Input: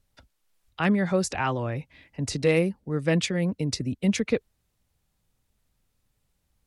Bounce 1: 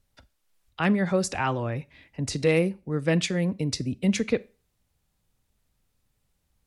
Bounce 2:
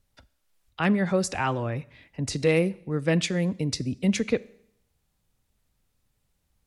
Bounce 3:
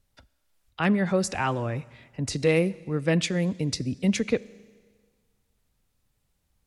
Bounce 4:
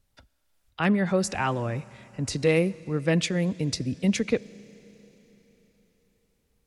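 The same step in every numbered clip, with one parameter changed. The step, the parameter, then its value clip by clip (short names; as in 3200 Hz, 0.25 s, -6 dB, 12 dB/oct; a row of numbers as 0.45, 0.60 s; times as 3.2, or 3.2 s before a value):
Schroeder reverb, RT60: 0.32, 0.7, 1.6, 4.2 s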